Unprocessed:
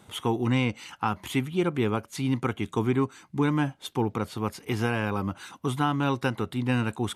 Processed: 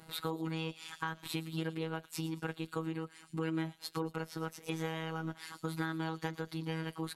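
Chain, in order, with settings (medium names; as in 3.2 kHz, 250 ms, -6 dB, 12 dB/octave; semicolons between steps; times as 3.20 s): wow and flutter 27 cents; formant shift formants +3 st; feedback echo behind a high-pass 114 ms, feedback 49%, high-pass 4.9 kHz, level -9 dB; compression 2.5:1, threshold -35 dBFS, peak gain reduction 10 dB; robot voice 161 Hz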